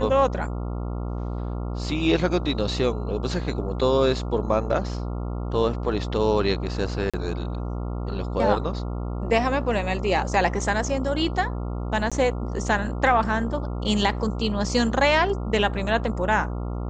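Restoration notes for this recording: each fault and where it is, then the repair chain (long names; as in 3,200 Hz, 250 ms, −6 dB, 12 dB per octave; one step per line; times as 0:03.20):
mains buzz 60 Hz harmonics 23 −29 dBFS
0:07.10–0:07.14: drop-out 36 ms
0:12.10–0:12.12: drop-out 16 ms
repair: hum removal 60 Hz, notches 23
repair the gap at 0:07.10, 36 ms
repair the gap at 0:12.10, 16 ms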